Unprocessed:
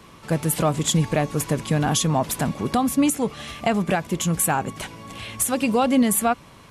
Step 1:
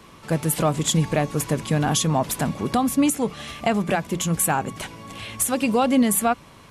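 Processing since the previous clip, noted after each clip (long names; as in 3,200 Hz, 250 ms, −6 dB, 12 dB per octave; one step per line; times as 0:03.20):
mains-hum notches 60/120/180 Hz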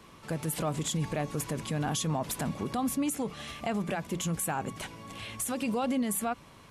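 brickwall limiter −16.5 dBFS, peak gain reduction 7 dB
level −6 dB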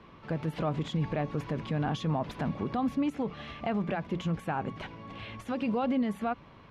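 high-frequency loss of the air 280 metres
level +1.5 dB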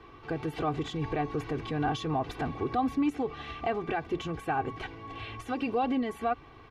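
comb filter 2.6 ms, depth 83%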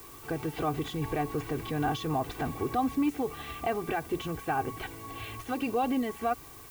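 background noise blue −51 dBFS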